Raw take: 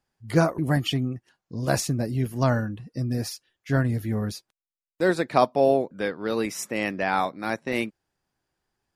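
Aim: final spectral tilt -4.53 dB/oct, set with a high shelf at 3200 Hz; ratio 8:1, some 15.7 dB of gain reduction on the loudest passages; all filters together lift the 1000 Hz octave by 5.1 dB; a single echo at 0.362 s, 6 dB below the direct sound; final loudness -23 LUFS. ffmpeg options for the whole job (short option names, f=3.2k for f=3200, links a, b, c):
-af "equalizer=f=1k:t=o:g=6.5,highshelf=f=3.2k:g=7,acompressor=threshold=-26dB:ratio=8,aecho=1:1:362:0.501,volume=8dB"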